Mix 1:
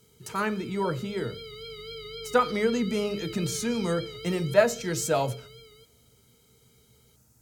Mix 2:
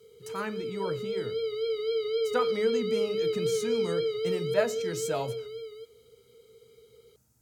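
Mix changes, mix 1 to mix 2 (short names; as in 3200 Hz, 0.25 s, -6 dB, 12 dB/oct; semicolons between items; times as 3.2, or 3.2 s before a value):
speech -6.5 dB; background: add resonant high-pass 460 Hz, resonance Q 5.7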